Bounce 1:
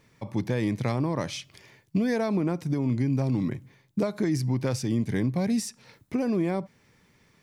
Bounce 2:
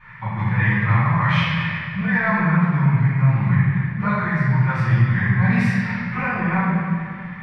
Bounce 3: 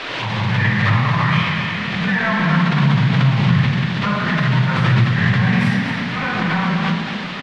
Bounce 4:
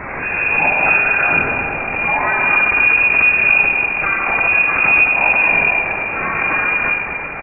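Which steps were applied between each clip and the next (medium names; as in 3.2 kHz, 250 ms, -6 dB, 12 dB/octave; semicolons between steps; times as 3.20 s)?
FFT filter 110 Hz 0 dB, 170 Hz +6 dB, 260 Hz -23 dB, 590 Hz -12 dB, 930 Hz +6 dB, 1.8 kHz +12 dB, 6.5 kHz -27 dB; reverse; compression 6:1, threshold -35 dBFS, peak gain reduction 13.5 dB; reverse; reverberation RT60 2.1 s, pre-delay 3 ms, DRR -16 dB
band noise 240–3500 Hz -31 dBFS; frequency-shifting echo 234 ms, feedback 34%, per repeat +38 Hz, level -9 dB; swell ahead of each attack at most 29 dB/s
frequency inversion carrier 2.6 kHz; trim +1.5 dB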